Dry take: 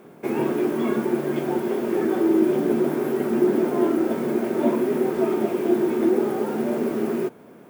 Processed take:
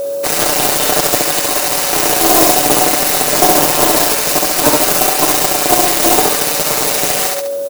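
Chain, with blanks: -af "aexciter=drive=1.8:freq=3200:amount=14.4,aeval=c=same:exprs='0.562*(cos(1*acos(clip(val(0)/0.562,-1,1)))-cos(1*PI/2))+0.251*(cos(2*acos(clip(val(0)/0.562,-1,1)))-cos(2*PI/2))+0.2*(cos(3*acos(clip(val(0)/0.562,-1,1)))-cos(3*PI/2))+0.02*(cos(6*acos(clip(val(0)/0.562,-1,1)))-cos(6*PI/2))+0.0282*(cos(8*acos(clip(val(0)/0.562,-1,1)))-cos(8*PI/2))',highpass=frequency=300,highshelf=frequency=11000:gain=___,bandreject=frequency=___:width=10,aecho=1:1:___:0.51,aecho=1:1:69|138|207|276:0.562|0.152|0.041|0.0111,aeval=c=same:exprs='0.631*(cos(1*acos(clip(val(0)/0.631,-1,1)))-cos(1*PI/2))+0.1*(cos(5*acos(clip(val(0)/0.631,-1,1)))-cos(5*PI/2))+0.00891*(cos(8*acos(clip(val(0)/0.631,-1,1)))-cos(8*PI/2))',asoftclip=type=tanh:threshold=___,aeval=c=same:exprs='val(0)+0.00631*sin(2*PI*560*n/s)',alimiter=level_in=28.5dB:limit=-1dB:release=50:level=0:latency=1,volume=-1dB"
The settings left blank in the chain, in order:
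-4, 3300, 6.7, -17.5dB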